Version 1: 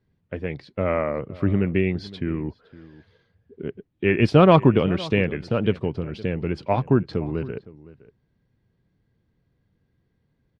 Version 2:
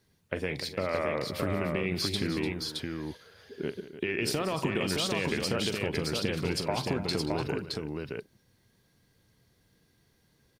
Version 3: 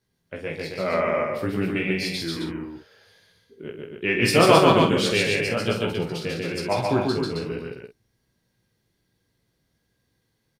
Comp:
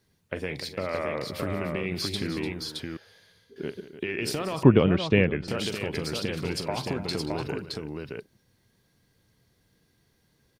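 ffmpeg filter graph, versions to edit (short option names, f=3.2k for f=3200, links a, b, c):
-filter_complex "[1:a]asplit=3[a][b][c];[a]atrim=end=2.972[d];[2:a]atrim=start=2.968:end=3.562[e];[b]atrim=start=3.558:end=4.632[f];[0:a]atrim=start=4.628:end=5.482[g];[c]atrim=start=5.478[h];[d][e]acrossfade=d=0.004:c1=hsin:c2=hsin[i];[i][f]acrossfade=d=0.004:c1=hsin:c2=hsin[j];[j][g]acrossfade=d=0.004:c1=hsin:c2=hsin[k];[k][h]acrossfade=d=0.004:c1=hsin:c2=hsin"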